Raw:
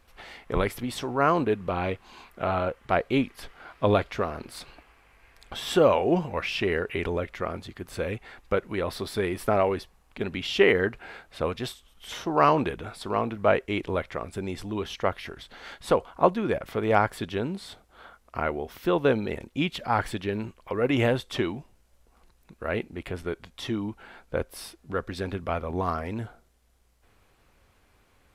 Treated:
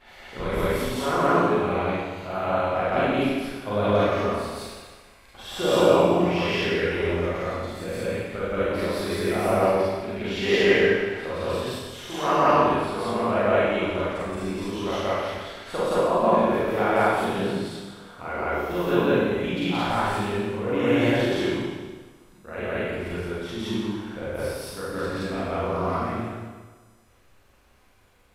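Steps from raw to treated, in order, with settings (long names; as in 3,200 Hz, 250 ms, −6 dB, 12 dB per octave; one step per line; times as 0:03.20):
backwards echo 172 ms −3.5 dB
four-comb reverb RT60 1.4 s, combs from 31 ms, DRR −9 dB
level −7.5 dB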